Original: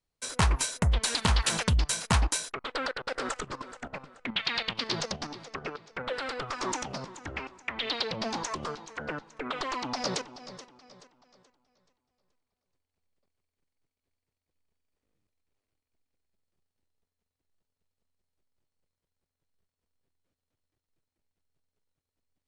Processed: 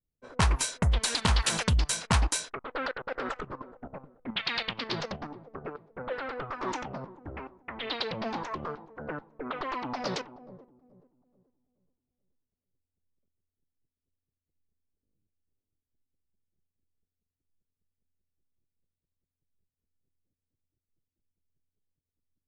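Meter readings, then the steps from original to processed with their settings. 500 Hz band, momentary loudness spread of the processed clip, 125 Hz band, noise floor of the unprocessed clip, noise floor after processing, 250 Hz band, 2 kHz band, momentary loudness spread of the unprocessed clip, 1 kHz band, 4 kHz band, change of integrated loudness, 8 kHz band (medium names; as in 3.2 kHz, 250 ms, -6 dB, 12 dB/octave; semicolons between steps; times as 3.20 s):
0.0 dB, 16 LU, 0.0 dB, under -85 dBFS, under -85 dBFS, 0.0 dB, -1.0 dB, 13 LU, -0.5 dB, -2.0 dB, -0.5 dB, -1.0 dB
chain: level-controlled noise filter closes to 310 Hz, open at -24 dBFS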